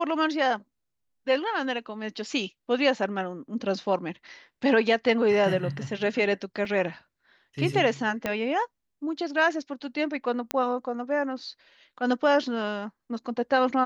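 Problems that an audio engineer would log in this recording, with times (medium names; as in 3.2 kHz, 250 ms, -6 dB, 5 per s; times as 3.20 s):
6.65 s: dropout 2.4 ms
8.26 s: pop -13 dBFS
10.51 s: pop -10 dBFS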